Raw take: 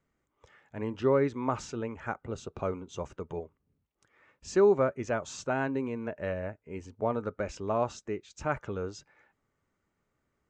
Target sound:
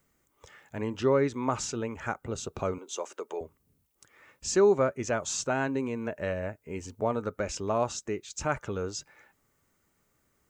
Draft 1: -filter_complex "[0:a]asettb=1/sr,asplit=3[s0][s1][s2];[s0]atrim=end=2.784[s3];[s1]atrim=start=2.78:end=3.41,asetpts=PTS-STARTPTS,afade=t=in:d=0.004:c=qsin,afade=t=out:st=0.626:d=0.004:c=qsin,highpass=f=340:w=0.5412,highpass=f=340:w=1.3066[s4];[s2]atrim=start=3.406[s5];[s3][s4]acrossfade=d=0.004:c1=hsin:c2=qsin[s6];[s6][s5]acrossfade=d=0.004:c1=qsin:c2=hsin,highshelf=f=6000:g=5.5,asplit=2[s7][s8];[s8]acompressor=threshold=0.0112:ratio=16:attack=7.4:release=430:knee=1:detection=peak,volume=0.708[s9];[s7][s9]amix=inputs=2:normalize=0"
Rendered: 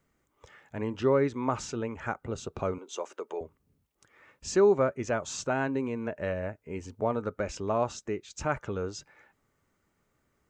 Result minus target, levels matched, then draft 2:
8 kHz band -5.5 dB
-filter_complex "[0:a]asettb=1/sr,asplit=3[s0][s1][s2];[s0]atrim=end=2.784[s3];[s1]atrim=start=2.78:end=3.41,asetpts=PTS-STARTPTS,afade=t=in:d=0.004:c=qsin,afade=t=out:st=0.626:d=0.004:c=qsin,highpass=f=340:w=0.5412,highpass=f=340:w=1.3066[s4];[s2]atrim=start=3.406[s5];[s3][s4]acrossfade=d=0.004:c1=hsin:c2=qsin[s6];[s6][s5]acrossfade=d=0.004:c1=qsin:c2=hsin,highshelf=f=6000:g=17,asplit=2[s7][s8];[s8]acompressor=threshold=0.0112:ratio=16:attack=7.4:release=430:knee=1:detection=peak,volume=0.708[s9];[s7][s9]amix=inputs=2:normalize=0"

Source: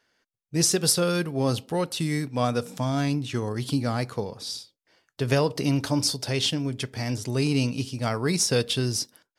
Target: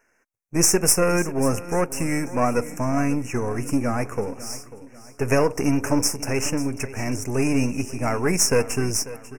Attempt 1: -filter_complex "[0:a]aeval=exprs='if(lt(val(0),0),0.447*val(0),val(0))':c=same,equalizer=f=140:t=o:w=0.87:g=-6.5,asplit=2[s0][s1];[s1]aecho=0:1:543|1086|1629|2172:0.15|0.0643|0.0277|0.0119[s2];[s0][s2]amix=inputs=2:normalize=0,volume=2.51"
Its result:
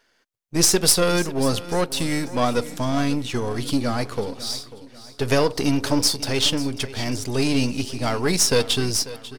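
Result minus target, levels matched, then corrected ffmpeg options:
4 kHz band +7.5 dB
-filter_complex "[0:a]aeval=exprs='if(lt(val(0),0),0.447*val(0),val(0))':c=same,asuperstop=centerf=3800:order=12:qfactor=1.4,equalizer=f=140:t=o:w=0.87:g=-6.5,asplit=2[s0][s1];[s1]aecho=0:1:543|1086|1629|2172:0.15|0.0643|0.0277|0.0119[s2];[s0][s2]amix=inputs=2:normalize=0,volume=2.51"

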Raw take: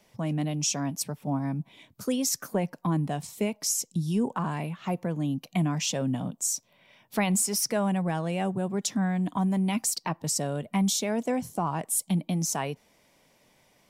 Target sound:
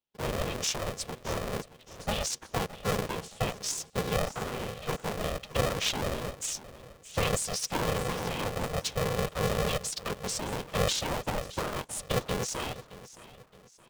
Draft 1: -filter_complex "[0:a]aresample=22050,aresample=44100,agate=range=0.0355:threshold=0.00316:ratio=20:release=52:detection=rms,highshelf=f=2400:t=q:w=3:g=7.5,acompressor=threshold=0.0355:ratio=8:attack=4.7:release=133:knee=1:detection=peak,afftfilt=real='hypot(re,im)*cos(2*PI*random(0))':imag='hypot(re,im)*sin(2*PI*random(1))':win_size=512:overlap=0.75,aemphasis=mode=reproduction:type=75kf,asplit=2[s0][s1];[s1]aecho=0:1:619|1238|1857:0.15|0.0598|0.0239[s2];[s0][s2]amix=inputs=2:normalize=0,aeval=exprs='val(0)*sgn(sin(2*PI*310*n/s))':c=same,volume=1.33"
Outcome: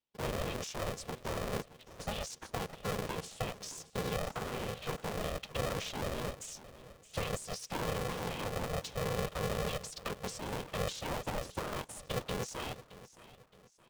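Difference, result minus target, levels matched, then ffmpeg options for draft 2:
compression: peak gain reduction +15 dB
-filter_complex "[0:a]aresample=22050,aresample=44100,agate=range=0.0355:threshold=0.00316:ratio=20:release=52:detection=rms,highshelf=f=2400:t=q:w=3:g=7.5,afftfilt=real='hypot(re,im)*cos(2*PI*random(0))':imag='hypot(re,im)*sin(2*PI*random(1))':win_size=512:overlap=0.75,aemphasis=mode=reproduction:type=75kf,asplit=2[s0][s1];[s1]aecho=0:1:619|1238|1857:0.15|0.0598|0.0239[s2];[s0][s2]amix=inputs=2:normalize=0,aeval=exprs='val(0)*sgn(sin(2*PI*310*n/s))':c=same,volume=1.33"

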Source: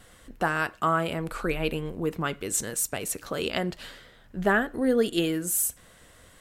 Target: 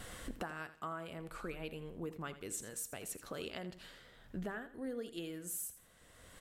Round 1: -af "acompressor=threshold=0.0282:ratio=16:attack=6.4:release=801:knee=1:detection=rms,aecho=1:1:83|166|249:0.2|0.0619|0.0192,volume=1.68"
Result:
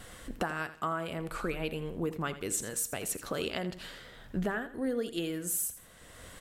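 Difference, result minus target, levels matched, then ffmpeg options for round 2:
compression: peak gain reduction -9.5 dB
-af "acompressor=threshold=0.00891:ratio=16:attack=6.4:release=801:knee=1:detection=rms,aecho=1:1:83|166|249:0.2|0.0619|0.0192,volume=1.68"

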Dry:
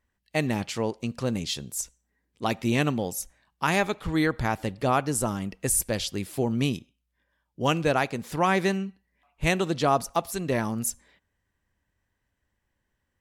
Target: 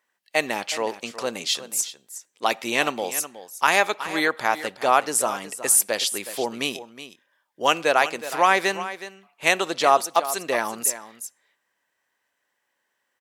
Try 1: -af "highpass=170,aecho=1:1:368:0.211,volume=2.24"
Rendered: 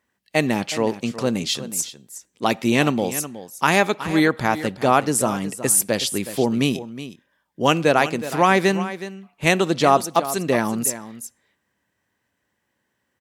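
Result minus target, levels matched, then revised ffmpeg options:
125 Hz band +16.5 dB
-af "highpass=570,aecho=1:1:368:0.211,volume=2.24"

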